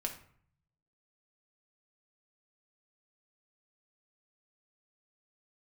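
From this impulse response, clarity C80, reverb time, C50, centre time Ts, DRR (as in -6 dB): 13.5 dB, 0.55 s, 9.5 dB, 15 ms, 1.5 dB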